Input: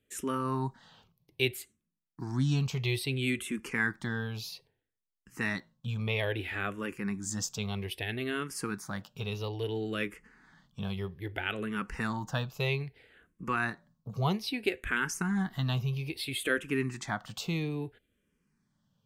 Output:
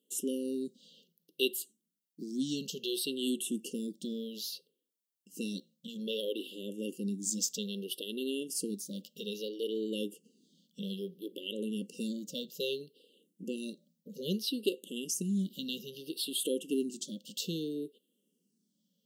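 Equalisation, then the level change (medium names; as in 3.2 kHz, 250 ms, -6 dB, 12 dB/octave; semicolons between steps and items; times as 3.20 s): brick-wall FIR high-pass 170 Hz; brick-wall FIR band-stop 590–2700 Hz; treble shelf 7.9 kHz +8 dB; 0.0 dB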